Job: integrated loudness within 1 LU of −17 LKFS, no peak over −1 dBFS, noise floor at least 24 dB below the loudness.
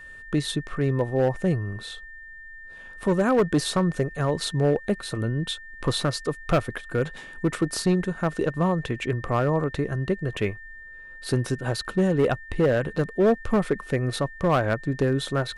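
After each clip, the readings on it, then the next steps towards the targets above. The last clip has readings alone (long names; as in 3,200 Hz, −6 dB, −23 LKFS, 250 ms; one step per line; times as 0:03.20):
share of clipped samples 1.4%; peaks flattened at −15.0 dBFS; interfering tone 1,800 Hz; level of the tone −41 dBFS; integrated loudness −25.5 LKFS; sample peak −15.0 dBFS; target loudness −17.0 LKFS
→ clipped peaks rebuilt −15 dBFS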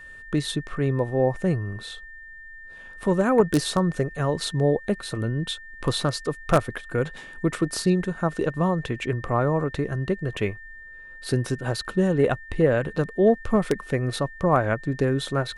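share of clipped samples 0.0%; interfering tone 1,800 Hz; level of the tone −41 dBFS
→ notch filter 1,800 Hz, Q 30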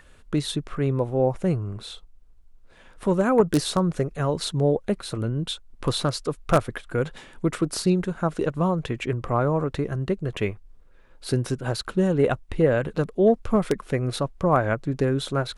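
interfering tone none found; integrated loudness −25.0 LKFS; sample peak −6.0 dBFS; target loudness −17.0 LKFS
→ level +8 dB
brickwall limiter −1 dBFS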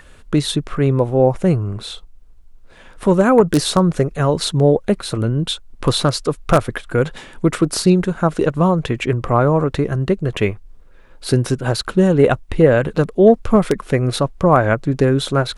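integrated loudness −17.0 LKFS; sample peak −1.0 dBFS; background noise floor −43 dBFS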